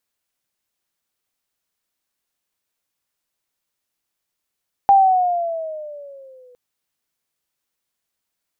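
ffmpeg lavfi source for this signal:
-f lavfi -i "aevalsrc='pow(10,(-7-38*t/1.66)/20)*sin(2*PI*800*1.66/(-8.5*log(2)/12)*(exp(-8.5*log(2)/12*t/1.66)-1))':d=1.66:s=44100"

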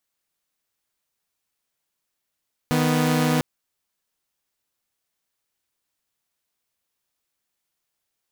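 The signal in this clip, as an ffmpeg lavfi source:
-f lavfi -i "aevalsrc='0.119*((2*mod(155.56*t,1)-1)+(2*mod(246.94*t,1)-1))':d=0.7:s=44100"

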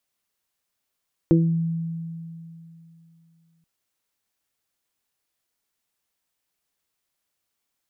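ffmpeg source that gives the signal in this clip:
-f lavfi -i "aevalsrc='0.178*pow(10,-3*t/2.94)*sin(2*PI*165*t)+0.282*pow(10,-3*t/0.36)*sin(2*PI*330*t)+0.0631*pow(10,-3*t/0.3)*sin(2*PI*495*t)':d=2.33:s=44100"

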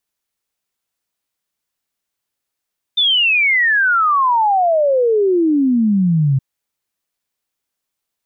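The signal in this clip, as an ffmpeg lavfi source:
-f lavfi -i "aevalsrc='0.282*clip(min(t,3.42-t)/0.01,0,1)*sin(2*PI*3600*3.42/log(130/3600)*(exp(log(130/3600)*t/3.42)-1))':d=3.42:s=44100"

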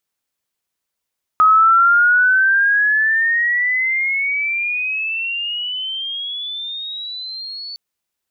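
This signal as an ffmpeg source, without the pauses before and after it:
-f lavfi -i "aevalsrc='pow(10,(-7.5-20*t/6.36)/20)*sin(2*PI*1260*6.36/(22*log(2)/12)*(exp(22*log(2)/12*t/6.36)-1))':d=6.36:s=44100"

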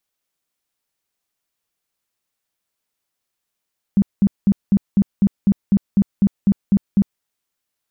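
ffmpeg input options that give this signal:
-f lavfi -i "aevalsrc='0.335*sin(2*PI*199*mod(t,0.25))*lt(mod(t,0.25),10/199)':d=3.25:s=44100"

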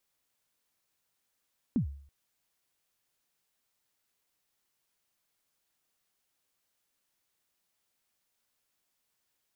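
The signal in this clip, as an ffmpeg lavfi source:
-f lavfi -i "aevalsrc='0.0841*pow(10,-3*t/0.54)*sin(2*PI*(280*0.104/log(70/280)*(exp(log(70/280)*min(t,0.104)/0.104)-1)+70*max(t-0.104,0)))':d=0.33:s=44100"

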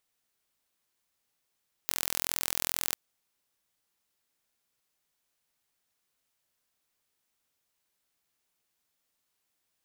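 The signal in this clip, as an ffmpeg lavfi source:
-f lavfi -i "aevalsrc='0.75*eq(mod(n,1043),0)':d=1.06:s=44100"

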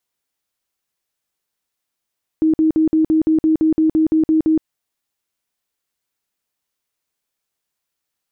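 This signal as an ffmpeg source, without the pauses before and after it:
-f lavfi -i "aevalsrc='0.282*sin(2*PI*316*mod(t,0.17))*lt(mod(t,0.17),37/316)':d=2.21:s=44100"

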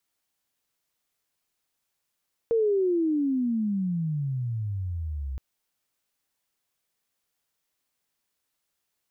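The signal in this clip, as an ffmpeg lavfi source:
-f lavfi -i "aevalsrc='pow(10,(-19.5-10*t/2.87)/20)*sin(2*PI*468*2.87/(-34.5*log(2)/12)*(exp(-34.5*log(2)/12*t/2.87)-1))':d=2.87:s=44100"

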